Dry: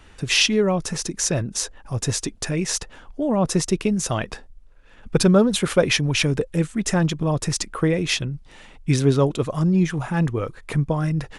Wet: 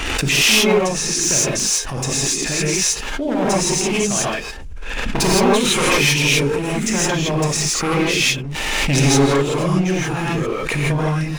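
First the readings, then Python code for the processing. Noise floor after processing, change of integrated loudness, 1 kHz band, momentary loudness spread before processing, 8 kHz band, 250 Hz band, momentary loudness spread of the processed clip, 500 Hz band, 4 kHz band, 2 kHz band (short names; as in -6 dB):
-27 dBFS, +4.5 dB, +8.0 dB, 10 LU, +9.0 dB, +1.5 dB, 8 LU, +3.5 dB, +7.0 dB, +8.5 dB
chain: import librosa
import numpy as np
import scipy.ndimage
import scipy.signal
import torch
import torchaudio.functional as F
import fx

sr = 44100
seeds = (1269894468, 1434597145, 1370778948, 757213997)

y = np.minimum(x, 2.0 * 10.0 ** (-17.5 / 20.0) - x)
y = fx.graphic_eq_15(y, sr, hz=(100, 2500, 6300), db=(-12, 7, 5))
y = fx.leveller(y, sr, passes=2)
y = fx.rev_gated(y, sr, seeds[0], gate_ms=190, shape='rising', drr_db=-7.0)
y = fx.pre_swell(y, sr, db_per_s=23.0)
y = F.gain(torch.from_numpy(y), -11.0).numpy()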